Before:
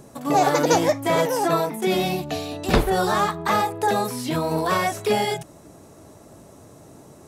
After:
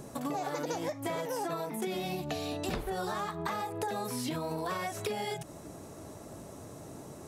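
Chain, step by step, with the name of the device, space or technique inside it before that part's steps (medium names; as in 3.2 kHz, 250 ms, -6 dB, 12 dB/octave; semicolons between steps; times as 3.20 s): serial compression, peaks first (compression, threshold -26 dBFS, peak gain reduction 12.5 dB; compression 2.5:1, threshold -34 dBFS, peak gain reduction 7.5 dB)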